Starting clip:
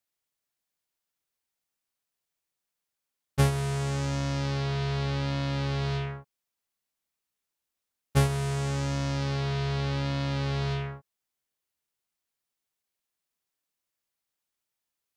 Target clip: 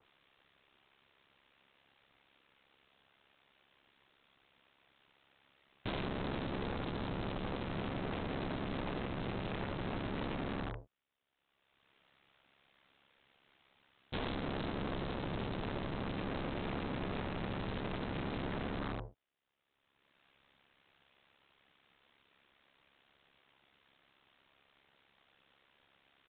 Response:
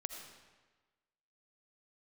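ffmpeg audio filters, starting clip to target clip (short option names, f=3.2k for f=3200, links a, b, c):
-af "acompressor=mode=upward:threshold=-49dB:ratio=2.5,asetrate=25442,aresample=44100,aecho=1:1:23|48:0.126|0.398,acompressor=threshold=-29dB:ratio=5,highpass=f=52:p=1,aeval=exprs='val(0)*sin(2*PI*34*n/s)':c=same,aresample=8000,aeval=exprs='(mod(59.6*val(0)+1,2)-1)/59.6':c=same,aresample=44100,adynamicequalizer=threshold=0.00126:dfrequency=1800:dqfactor=0.7:tfrequency=1800:tqfactor=0.7:attack=5:release=100:ratio=0.375:range=3.5:mode=cutabove:tftype=highshelf,volume=3dB"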